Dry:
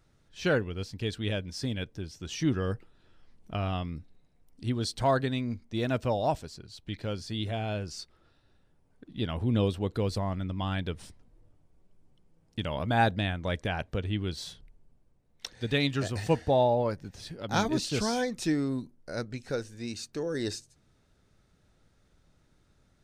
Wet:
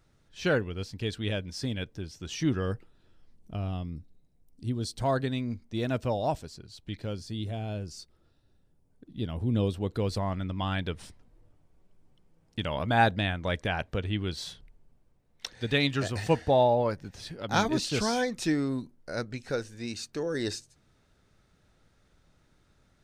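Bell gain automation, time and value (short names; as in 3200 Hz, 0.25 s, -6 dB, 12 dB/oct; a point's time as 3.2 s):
bell 1700 Hz 3 oct
2.65 s +0.5 dB
3.6 s -11 dB
4.67 s -11 dB
5.23 s -2 dB
6.91 s -2 dB
7.39 s -8.5 dB
9.31 s -8.5 dB
10.29 s +3 dB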